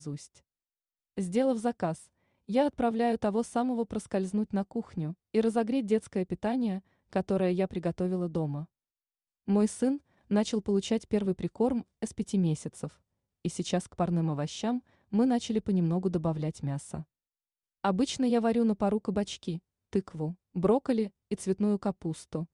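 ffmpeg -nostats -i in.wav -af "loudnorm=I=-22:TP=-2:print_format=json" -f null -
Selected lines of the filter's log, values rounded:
"input_i" : "-30.6",
"input_tp" : "-15.0",
"input_lra" : "2.1",
"input_thresh" : "-40.9",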